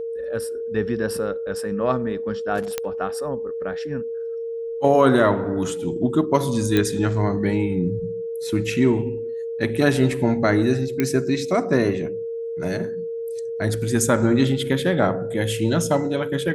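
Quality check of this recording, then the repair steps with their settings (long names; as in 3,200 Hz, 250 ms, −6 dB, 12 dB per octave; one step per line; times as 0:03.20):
whistle 460 Hz −26 dBFS
0:02.78: click −9 dBFS
0:06.77: click −7 dBFS
0:11.00: click −8 dBFS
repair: click removal
notch filter 460 Hz, Q 30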